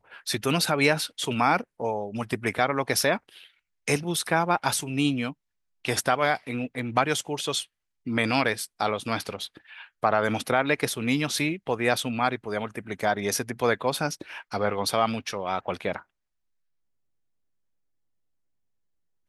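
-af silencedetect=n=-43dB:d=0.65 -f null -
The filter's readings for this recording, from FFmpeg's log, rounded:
silence_start: 16.02
silence_end: 19.28 | silence_duration: 3.26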